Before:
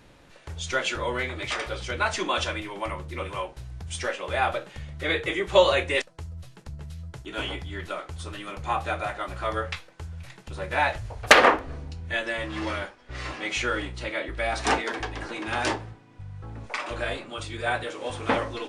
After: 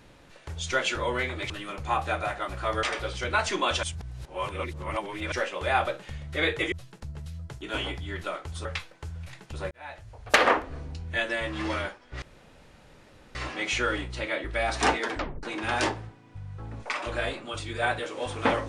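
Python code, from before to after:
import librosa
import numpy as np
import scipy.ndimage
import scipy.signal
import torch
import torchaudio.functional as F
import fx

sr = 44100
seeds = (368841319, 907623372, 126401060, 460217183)

y = fx.edit(x, sr, fx.reverse_span(start_s=2.5, length_s=1.49),
    fx.cut(start_s=5.39, length_s=0.97),
    fx.move(start_s=8.29, length_s=1.33, to_s=1.5),
    fx.fade_in_span(start_s=10.68, length_s=1.26),
    fx.insert_room_tone(at_s=13.19, length_s=1.13),
    fx.tape_stop(start_s=14.98, length_s=0.29), tone=tone)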